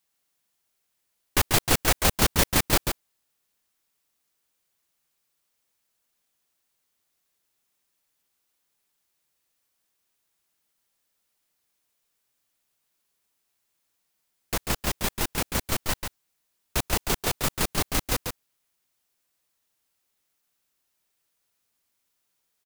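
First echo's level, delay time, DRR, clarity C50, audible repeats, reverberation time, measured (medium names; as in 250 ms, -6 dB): -6.0 dB, 141 ms, no reverb, no reverb, 1, no reverb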